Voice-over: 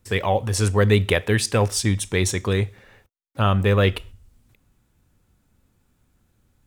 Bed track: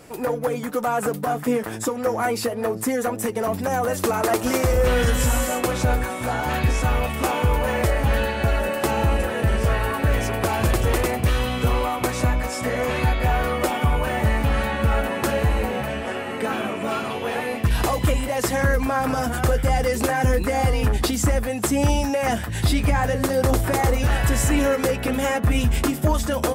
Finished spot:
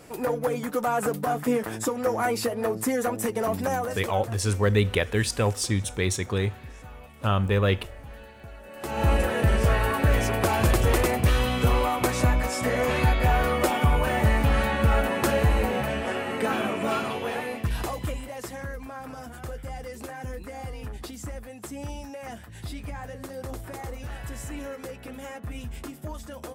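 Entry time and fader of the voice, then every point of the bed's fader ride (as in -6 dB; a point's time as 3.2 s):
3.85 s, -4.5 dB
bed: 3.7 s -2.5 dB
4.37 s -23 dB
8.63 s -23 dB
9.08 s -1 dB
16.94 s -1 dB
18.74 s -16.5 dB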